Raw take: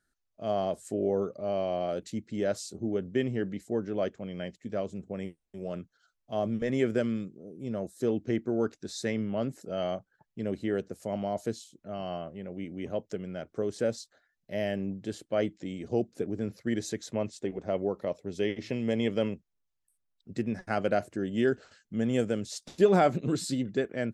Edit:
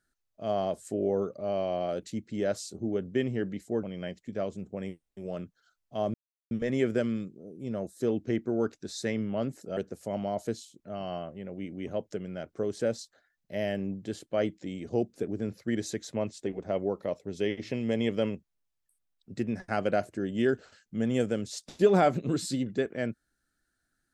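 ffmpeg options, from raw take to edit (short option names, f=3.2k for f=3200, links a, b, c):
-filter_complex "[0:a]asplit=4[a][b][c][d];[a]atrim=end=3.832[e];[b]atrim=start=4.198:end=6.51,asetpts=PTS-STARTPTS,afade=t=out:st=2.308:d=0.004:c=hsin,apad=pad_dur=0.37[f];[c]atrim=start=6.51:end=9.772,asetpts=PTS-STARTPTS,afade=t=in:d=0.004:c=hsin[g];[d]atrim=start=10.758[h];[f][g]concat=n=2:v=0:a=1[i];[e][i]acrossfade=d=0.004:c1=hsin:c2=hsin[j];[j][h]acrossfade=d=0.004:c1=hsin:c2=hsin"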